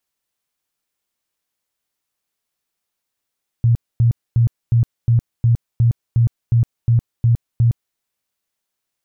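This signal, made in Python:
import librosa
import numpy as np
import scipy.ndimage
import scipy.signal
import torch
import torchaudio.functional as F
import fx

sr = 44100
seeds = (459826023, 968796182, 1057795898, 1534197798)

y = fx.tone_burst(sr, hz=117.0, cycles=13, every_s=0.36, bursts=12, level_db=-10.0)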